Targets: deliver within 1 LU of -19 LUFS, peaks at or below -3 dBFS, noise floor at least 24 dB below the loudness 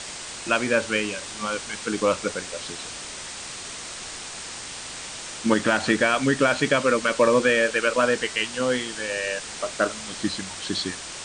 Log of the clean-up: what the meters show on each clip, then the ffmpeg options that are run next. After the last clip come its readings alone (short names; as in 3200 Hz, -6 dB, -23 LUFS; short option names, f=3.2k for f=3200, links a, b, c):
noise floor -37 dBFS; noise floor target -49 dBFS; loudness -24.5 LUFS; peak -6.5 dBFS; loudness target -19.0 LUFS
-> -af "afftdn=nr=12:nf=-37"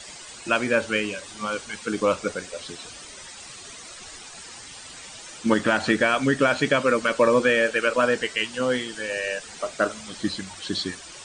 noise floor -42 dBFS; noise floor target -48 dBFS
-> -af "afftdn=nr=6:nf=-42"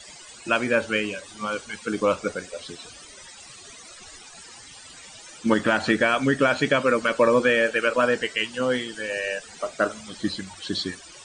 noise floor -45 dBFS; noise floor target -48 dBFS
-> -af "afftdn=nr=6:nf=-45"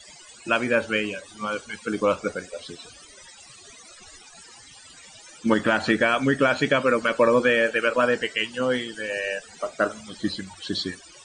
noise floor -48 dBFS; loudness -24.0 LUFS; peak -7.0 dBFS; loudness target -19.0 LUFS
-> -af "volume=5dB,alimiter=limit=-3dB:level=0:latency=1"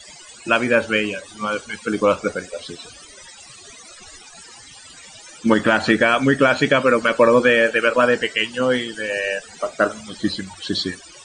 loudness -19.0 LUFS; peak -3.0 dBFS; noise floor -43 dBFS